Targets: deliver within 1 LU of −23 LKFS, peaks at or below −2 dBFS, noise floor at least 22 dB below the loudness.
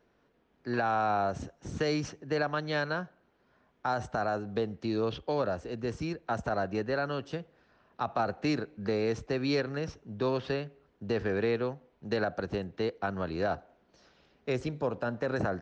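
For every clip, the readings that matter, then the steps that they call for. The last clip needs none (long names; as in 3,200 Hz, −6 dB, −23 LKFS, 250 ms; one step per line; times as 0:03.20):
integrated loudness −32.5 LKFS; sample peak −18.5 dBFS; target loudness −23.0 LKFS
→ level +9.5 dB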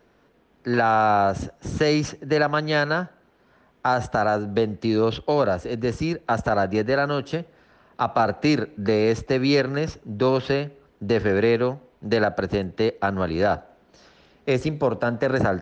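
integrated loudness −23.0 LKFS; sample peak −9.0 dBFS; background noise floor −60 dBFS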